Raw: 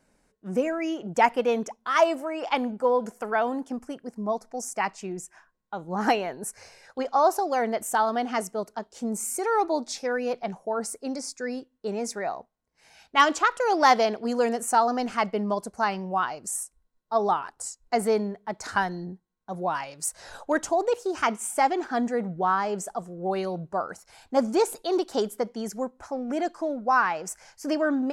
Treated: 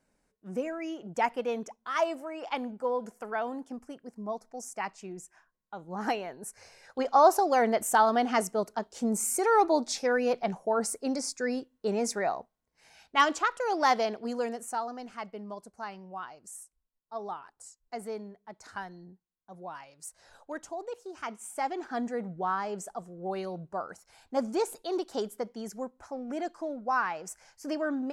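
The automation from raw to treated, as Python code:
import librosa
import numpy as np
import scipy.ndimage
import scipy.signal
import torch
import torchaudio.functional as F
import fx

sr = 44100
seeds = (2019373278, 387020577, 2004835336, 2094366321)

y = fx.gain(x, sr, db=fx.line((6.43, -7.5), (7.16, 1.0), (12.23, 1.0), (13.55, -6.0), (14.26, -6.0), (14.97, -14.0), (21.15, -14.0), (21.95, -6.5)))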